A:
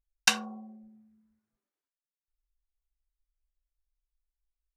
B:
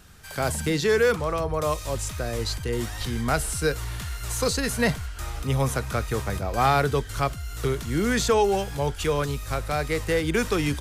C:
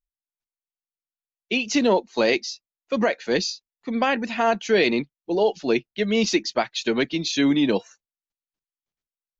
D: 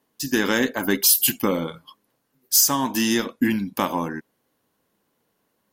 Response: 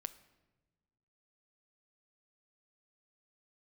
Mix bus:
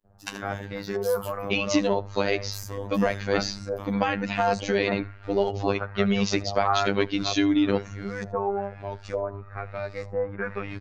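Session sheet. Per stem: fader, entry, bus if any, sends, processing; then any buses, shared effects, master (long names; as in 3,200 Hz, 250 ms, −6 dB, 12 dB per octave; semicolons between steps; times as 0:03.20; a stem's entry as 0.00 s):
−8.0 dB, 0.00 s, no send, echo send −11.5 dB, no processing
−4.5 dB, 0.05 s, no send, echo send −23.5 dB, thirty-one-band graphic EQ 315 Hz −11 dB, 630 Hz +4 dB, 3,150 Hz −11 dB; auto-filter low-pass saw up 1.1 Hz 590–6,600 Hz; high-shelf EQ 4,800 Hz −11 dB
+3.0 dB, 0.00 s, send −13.5 dB, echo send −22.5 dB, downward compressor, threshold −21 dBFS, peak gain reduction 7.5 dB
−19.5 dB, 0.00 s, send −4.5 dB, no echo send, no processing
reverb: on, pre-delay 7 ms
echo: single-tap delay 79 ms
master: high-shelf EQ 3,700 Hz −7.5 dB; phases set to zero 99.8 Hz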